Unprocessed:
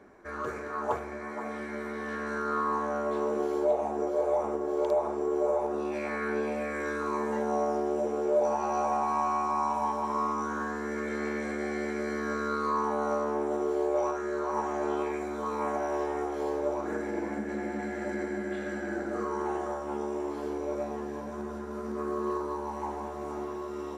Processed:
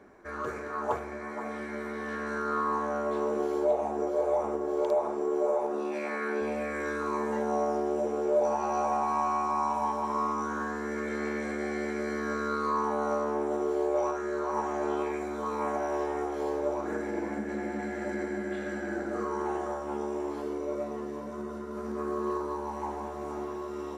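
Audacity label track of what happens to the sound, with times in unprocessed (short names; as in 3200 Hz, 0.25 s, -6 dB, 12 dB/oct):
4.810000	6.400000	HPF 99 Hz -> 230 Hz
20.420000	21.770000	notch comb 810 Hz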